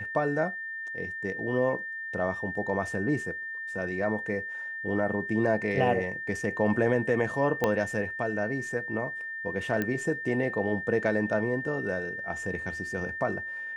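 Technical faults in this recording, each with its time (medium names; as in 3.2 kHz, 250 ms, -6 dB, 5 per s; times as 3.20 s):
whine 1.8 kHz -34 dBFS
7.64 s: pop -12 dBFS
9.82 s: pop -16 dBFS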